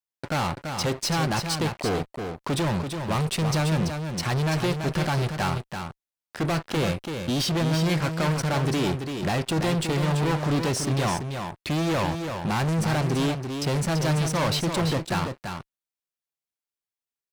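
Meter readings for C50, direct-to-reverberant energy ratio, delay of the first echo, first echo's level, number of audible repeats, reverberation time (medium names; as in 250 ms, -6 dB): no reverb, no reverb, 335 ms, -6.5 dB, 1, no reverb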